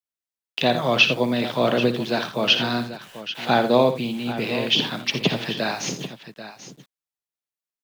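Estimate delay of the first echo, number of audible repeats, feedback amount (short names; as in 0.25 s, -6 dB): 58 ms, 2, no steady repeat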